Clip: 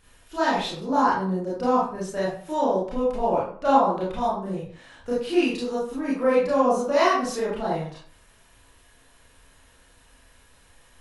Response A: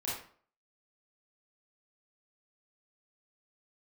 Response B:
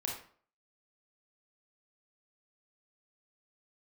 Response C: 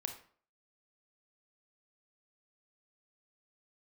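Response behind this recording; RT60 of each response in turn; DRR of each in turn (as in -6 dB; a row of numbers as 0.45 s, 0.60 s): A; 0.50 s, 0.50 s, 0.50 s; -8.0 dB, -1.5 dB, 5.0 dB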